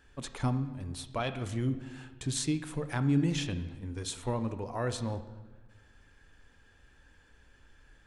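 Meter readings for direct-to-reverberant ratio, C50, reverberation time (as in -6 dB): 10.0 dB, 12.0 dB, 1.3 s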